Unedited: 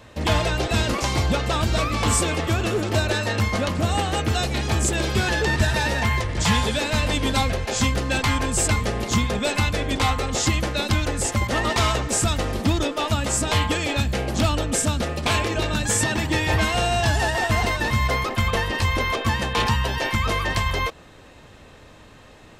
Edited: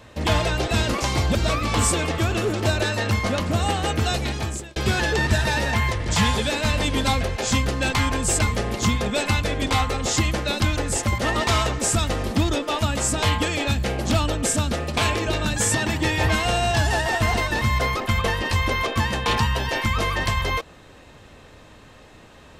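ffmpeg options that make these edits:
ffmpeg -i in.wav -filter_complex "[0:a]asplit=3[link_01][link_02][link_03];[link_01]atrim=end=1.352[link_04];[link_02]atrim=start=1.638:end=5.05,asetpts=PTS-STARTPTS,afade=type=out:start_time=2.852:duration=0.56[link_05];[link_03]atrim=start=5.05,asetpts=PTS-STARTPTS,afade=type=in:duration=0.004:curve=hsin[link_06];[link_05][link_06]concat=n=2:v=0:a=1[link_07];[link_04][link_07]acrossfade=duration=0.004:curve1=hsin:curve2=hsin" out.wav

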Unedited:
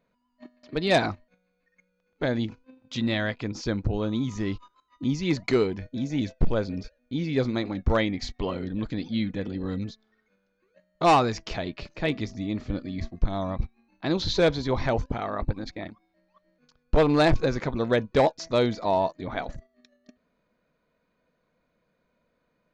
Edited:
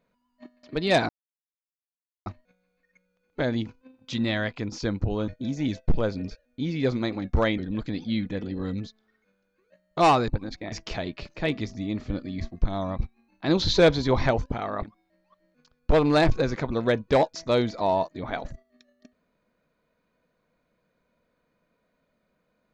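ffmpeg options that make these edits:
ffmpeg -i in.wav -filter_complex "[0:a]asplit=9[link_01][link_02][link_03][link_04][link_05][link_06][link_07][link_08][link_09];[link_01]atrim=end=1.09,asetpts=PTS-STARTPTS,afade=type=out:start_time=1.086:duration=0.004:curve=hsin,apad=pad_dur=1.17[link_10];[link_02]atrim=start=1.09:end=4.112,asetpts=PTS-STARTPTS,afade=type=in:duration=0.004:curve=hsin[link_11];[link_03]atrim=start=5.808:end=8.112[link_12];[link_04]atrim=start=8.618:end=11.322[link_13];[link_05]atrim=start=15.428:end=15.872[link_14];[link_06]atrim=start=11.318:end=14.082[link_15];[link_07]atrim=start=14.078:end=14.912,asetpts=PTS-STARTPTS,volume=3.5dB[link_16];[link_08]atrim=start=14.908:end=15.432[link_17];[link_09]atrim=start=15.868[link_18];[link_10][link_11]concat=n=2:v=0:a=1[link_19];[link_19][link_12]acrossfade=duration=0.004:curve1=hsin:curve2=hsin[link_20];[link_20][link_13]acrossfade=duration=0.004:curve1=hsin:curve2=hsin[link_21];[link_21][link_14]acrossfade=duration=0.004:curve1=hsin:curve2=hsin[link_22];[link_22][link_15]acrossfade=duration=0.004:curve1=hsin:curve2=hsin[link_23];[link_23][link_16]acrossfade=duration=0.004:curve1=hsin:curve2=hsin[link_24];[link_24][link_17]acrossfade=duration=0.004:curve1=hsin:curve2=hsin[link_25];[link_25][link_18]acrossfade=duration=0.004:curve1=hsin:curve2=hsin" out.wav

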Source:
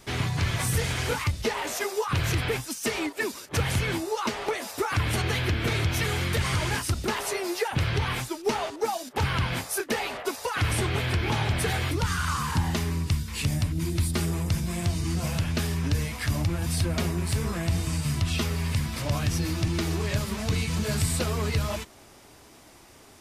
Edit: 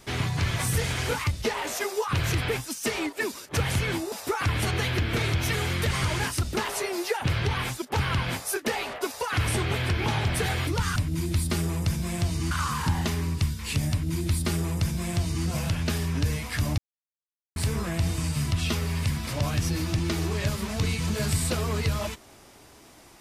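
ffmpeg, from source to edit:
ffmpeg -i in.wav -filter_complex "[0:a]asplit=7[link_01][link_02][link_03][link_04][link_05][link_06][link_07];[link_01]atrim=end=4.122[link_08];[link_02]atrim=start=4.628:end=8.332[link_09];[link_03]atrim=start=9.058:end=12.202[link_10];[link_04]atrim=start=13.598:end=15.152[link_11];[link_05]atrim=start=12.198:end=16.47,asetpts=PTS-STARTPTS,afade=type=out:start_time=4.268:duration=0.004:curve=hsin[link_12];[link_06]atrim=start=16.47:end=17.25,asetpts=PTS-STARTPTS,volume=0[link_13];[link_07]atrim=start=17.25,asetpts=PTS-STARTPTS,afade=type=in:duration=0.004:curve=hsin[link_14];[link_08][link_09]acrossfade=duration=0.004:curve1=hsin:curve2=hsin[link_15];[link_15][link_10]acrossfade=duration=0.004:curve1=hsin:curve2=hsin[link_16];[link_16][link_11]acrossfade=duration=0.004:curve1=hsin:curve2=hsin[link_17];[link_12][link_13][link_14]concat=n=3:v=0:a=1[link_18];[link_17][link_18]acrossfade=duration=0.004:curve1=hsin:curve2=hsin" out.wav

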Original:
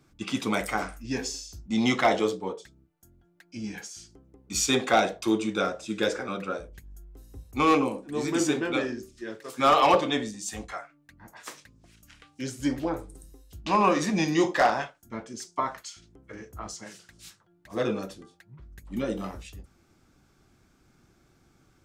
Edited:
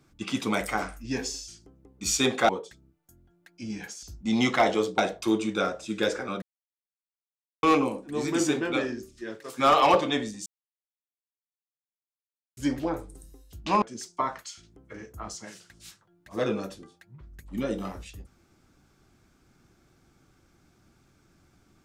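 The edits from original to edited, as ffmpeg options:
ffmpeg -i in.wav -filter_complex "[0:a]asplit=10[link_01][link_02][link_03][link_04][link_05][link_06][link_07][link_08][link_09][link_10];[link_01]atrim=end=1.482[link_11];[link_02]atrim=start=3.968:end=4.982[link_12];[link_03]atrim=start=2.428:end=3.972[link_13];[link_04]atrim=start=1.478:end=2.432[link_14];[link_05]atrim=start=4.978:end=6.42,asetpts=PTS-STARTPTS,afade=type=out:start_time=1.438:duration=0.004:curve=hsin[link_15];[link_06]atrim=start=6.42:end=7.63,asetpts=PTS-STARTPTS,volume=0[link_16];[link_07]atrim=start=7.63:end=10.46,asetpts=PTS-STARTPTS,afade=type=in:duration=0.004:curve=hsin,afade=type=out:start_time=2.826:duration=0.004:curve=hsin[link_17];[link_08]atrim=start=10.46:end=12.57,asetpts=PTS-STARTPTS,volume=0[link_18];[link_09]atrim=start=12.57:end=13.822,asetpts=PTS-STARTPTS,afade=type=in:duration=0.004:curve=hsin[link_19];[link_10]atrim=start=15.208[link_20];[link_11][link_12]acrossfade=duration=0.004:curve1=hsin:curve2=hsin[link_21];[link_21][link_13]acrossfade=duration=0.004:curve1=hsin:curve2=hsin[link_22];[link_22][link_14]acrossfade=duration=0.004:curve1=hsin:curve2=hsin[link_23];[link_15][link_16][link_17][link_18][link_19]concat=n=5:v=0:a=1[link_24];[link_23][link_24]acrossfade=duration=0.004:curve1=hsin:curve2=hsin[link_25];[link_25][link_20]acrossfade=duration=0.004:curve1=hsin:curve2=hsin" out.wav

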